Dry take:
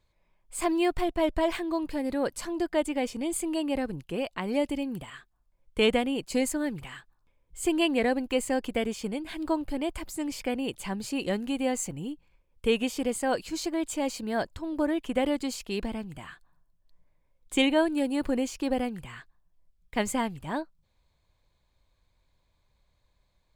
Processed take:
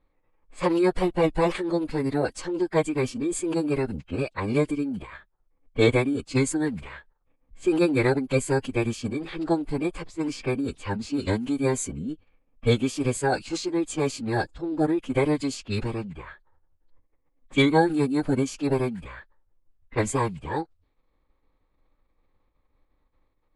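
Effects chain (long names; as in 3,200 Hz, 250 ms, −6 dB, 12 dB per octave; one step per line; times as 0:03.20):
phase-vocoder pitch shift with formants kept −11.5 semitones
low-pass that shuts in the quiet parts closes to 1,800 Hz, open at −26.5 dBFS
level +4.5 dB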